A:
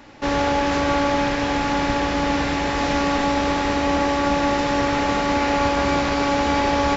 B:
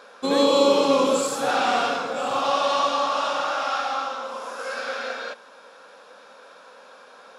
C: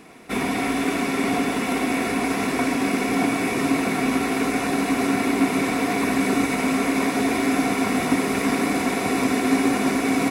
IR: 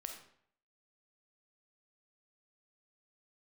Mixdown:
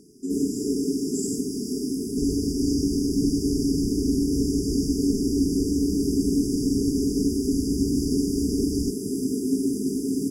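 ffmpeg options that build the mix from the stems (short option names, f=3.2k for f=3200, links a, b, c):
-filter_complex "[0:a]alimiter=limit=-14dB:level=0:latency=1:release=186,adelay=1950,volume=2dB[a];[1:a]volume=-2dB[b];[2:a]volume=-3.5dB[c];[a][b][c]amix=inputs=3:normalize=0,afftfilt=real='re*(1-between(b*sr/4096,450,4700))':imag='im*(1-between(b*sr/4096,450,4700))':win_size=4096:overlap=0.75"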